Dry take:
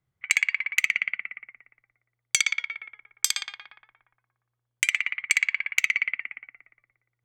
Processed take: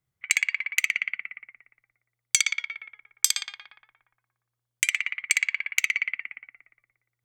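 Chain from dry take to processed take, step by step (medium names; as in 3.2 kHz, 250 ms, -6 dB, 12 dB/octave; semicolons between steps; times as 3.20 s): treble shelf 3.5 kHz +7.5 dB; trim -3.5 dB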